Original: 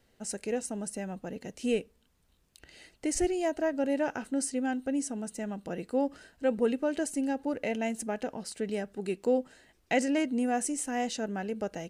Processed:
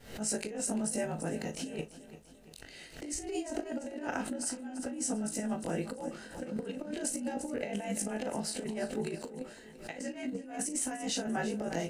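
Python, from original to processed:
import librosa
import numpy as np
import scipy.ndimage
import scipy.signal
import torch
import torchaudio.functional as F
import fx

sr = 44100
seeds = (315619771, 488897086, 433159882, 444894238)

y = fx.frame_reverse(x, sr, frame_ms=47.0)
y = fx.over_compress(y, sr, threshold_db=-38.0, ratio=-0.5)
y = fx.doubler(y, sr, ms=37.0, db=-11.5)
y = fx.echo_feedback(y, sr, ms=342, feedback_pct=52, wet_db=-15.0)
y = fx.pre_swell(y, sr, db_per_s=110.0)
y = y * 10.0 ** (2.0 / 20.0)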